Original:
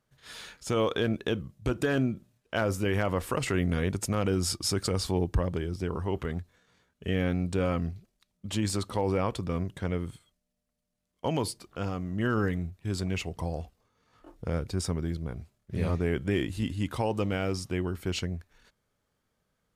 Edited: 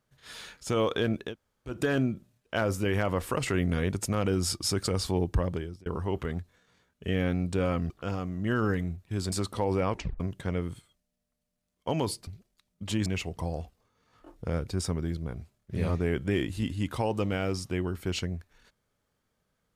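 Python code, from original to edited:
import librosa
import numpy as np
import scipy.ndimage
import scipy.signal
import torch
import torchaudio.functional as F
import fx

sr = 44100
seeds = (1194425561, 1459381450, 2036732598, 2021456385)

y = fx.edit(x, sr, fx.room_tone_fill(start_s=1.28, length_s=0.44, crossfade_s=0.16),
    fx.fade_out_span(start_s=5.52, length_s=0.34),
    fx.swap(start_s=7.9, length_s=0.79, other_s=11.64, other_length_s=1.42),
    fx.tape_stop(start_s=9.28, length_s=0.29), tone=tone)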